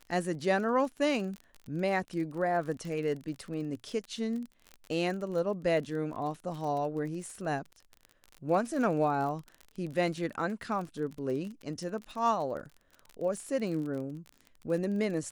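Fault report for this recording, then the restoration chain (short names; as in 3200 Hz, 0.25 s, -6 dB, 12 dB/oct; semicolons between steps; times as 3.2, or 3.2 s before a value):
crackle 37/s -37 dBFS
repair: de-click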